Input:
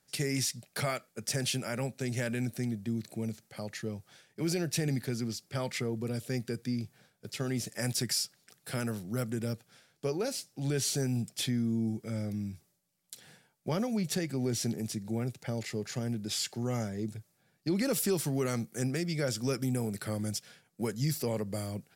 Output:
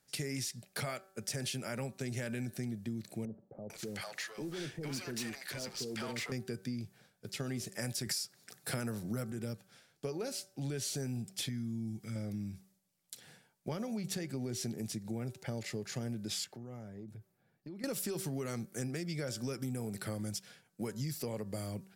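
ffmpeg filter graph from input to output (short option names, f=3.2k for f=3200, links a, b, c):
-filter_complex "[0:a]asettb=1/sr,asplit=3[a][b][c];[a]atrim=end=3.254[d];[b]atrim=start=3.25:end=6.32,asetpts=PTS-STARTPTS,afade=t=in:d=0.004:c=qsin,afade=t=out:st=3.066:d=0.004:c=qsin,asplit=2[e][f];[f]highpass=f=720:p=1,volume=21dB,asoftclip=type=tanh:threshold=-20dB[g];[e][g]amix=inputs=2:normalize=0,lowpass=f=6.6k:p=1,volume=-6dB,acompressor=threshold=-38dB:ratio=2.5:attack=3.2:release=140:knee=1:detection=peak,acrossover=split=600[h][i];[i]adelay=450[j];[h][j]amix=inputs=2:normalize=0,atrim=end_sample=135387[k];[c]atrim=start=6.316[l];[d][k]acrossfade=d=0.004:c1=hsin:c2=qsin[m];[m][l]acrossfade=d=0.004:c1=qsin:c2=hsin,asettb=1/sr,asplit=3[n][o][p];[n]atrim=end=8.064[q];[o]atrim=start=8.06:end=9.32,asetpts=PTS-STARTPTS,afade=t=in:d=0.004:c=qsin,afade=t=out:st=1.256:d=0.004:c=qsin,highpass=43,equalizer=f=3k:t=o:w=0.42:g=-4.5,acontrast=74[r];[p]atrim=start=9.316[s];[q][r]acrossfade=d=0.004:c1=hsin:c2=qsin[t];[t][s]acrossfade=d=0.004:c1=qsin:c2=hsin,asettb=1/sr,asplit=3[u][v][w];[u]atrim=end=11.494[x];[v]atrim=start=11.49:end=12.16,asetpts=PTS-STARTPTS,afade=t=in:d=0.004:c=qsin,afade=t=out:st=0.666:d=0.004:c=qsin,equalizer=f=530:t=o:w=1.6:g=-13,acompressor=mode=upward:threshold=-41dB:ratio=2.5:attack=3.2:release=140:knee=2.83:detection=peak[y];[w]atrim=start=12.156[z];[x][y]acrossfade=d=0.004:c1=hsin:c2=qsin[aa];[aa][z]acrossfade=d=0.004:c1=qsin:c2=hsin,asettb=1/sr,asplit=3[ab][ac][ad];[ab]atrim=end=16.444[ae];[ac]atrim=start=16.44:end=17.84,asetpts=PTS-STARTPTS,afade=t=in:d=0.004:c=qsin,afade=t=out:st=1.396:d=0.004:c=qsin,equalizer=f=6.9k:w=0.37:g=-12,acompressor=threshold=-44dB:ratio=4:attack=3.2:release=140:knee=1:detection=peak[af];[ad]atrim=start=17.836[ag];[ae][af]acrossfade=d=0.004:c1=hsin:c2=qsin[ah];[ah][ag]acrossfade=d=0.004:c1=qsin:c2=hsin,bandreject=f=191.3:t=h:w=4,bandreject=f=382.6:t=h:w=4,bandreject=f=573.9:t=h:w=4,bandreject=f=765.2:t=h:w=4,bandreject=f=956.5:t=h:w=4,bandreject=f=1.1478k:t=h:w=4,bandreject=f=1.3391k:t=h:w=4,bandreject=f=1.5304k:t=h:w=4,bandreject=f=1.7217k:t=h:w=4,acompressor=threshold=-33dB:ratio=6,volume=-1.5dB"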